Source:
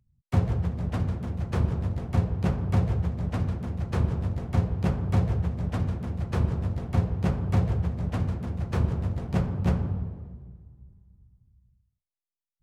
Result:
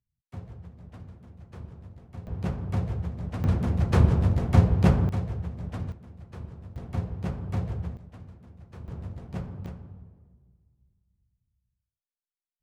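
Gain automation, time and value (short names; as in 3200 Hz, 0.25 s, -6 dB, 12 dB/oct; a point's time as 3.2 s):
-17 dB
from 2.27 s -4.5 dB
from 3.44 s +6 dB
from 5.09 s -6 dB
from 5.92 s -15 dB
from 6.76 s -6 dB
from 7.97 s -18 dB
from 8.88 s -9 dB
from 9.66 s -16 dB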